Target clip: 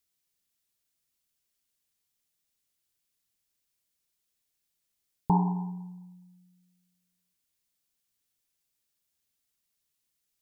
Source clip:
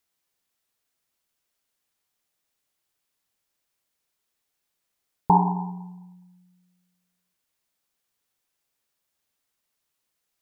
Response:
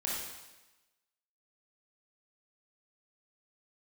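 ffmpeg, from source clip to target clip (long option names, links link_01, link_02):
-af "equalizer=frequency=880:width=0.43:gain=-10"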